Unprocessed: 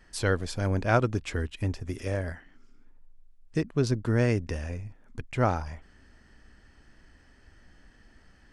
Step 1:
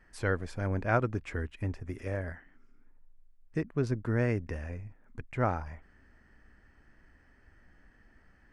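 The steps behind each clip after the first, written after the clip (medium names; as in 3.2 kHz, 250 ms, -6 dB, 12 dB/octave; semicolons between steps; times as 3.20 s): resonant high shelf 2.7 kHz -7.5 dB, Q 1.5; trim -4.5 dB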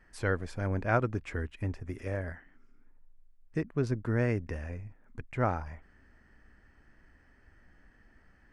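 no audible change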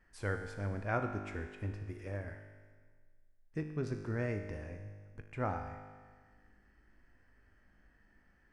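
feedback comb 51 Hz, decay 1.6 s, harmonics all, mix 80%; trim +4.5 dB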